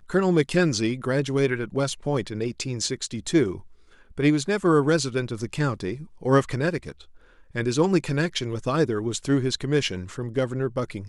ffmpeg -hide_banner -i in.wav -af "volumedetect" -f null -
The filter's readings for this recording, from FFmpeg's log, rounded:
mean_volume: -24.6 dB
max_volume: -7.3 dB